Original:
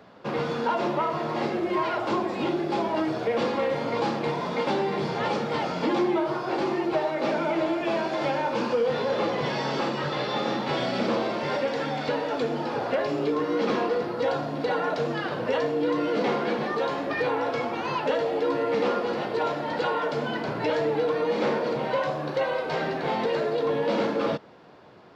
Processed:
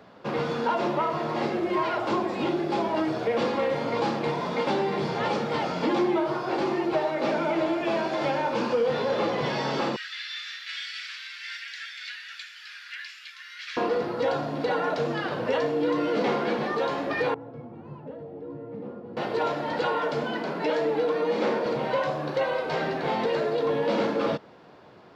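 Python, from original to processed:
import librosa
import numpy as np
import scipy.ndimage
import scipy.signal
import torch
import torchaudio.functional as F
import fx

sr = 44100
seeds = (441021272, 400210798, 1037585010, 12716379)

y = fx.steep_highpass(x, sr, hz=1600.0, slope=48, at=(9.96, 13.77))
y = fx.bandpass_q(y, sr, hz=120.0, q=1.4, at=(17.34, 19.17))
y = fx.ellip_highpass(y, sr, hz=160.0, order=4, stop_db=40, at=(20.23, 21.66))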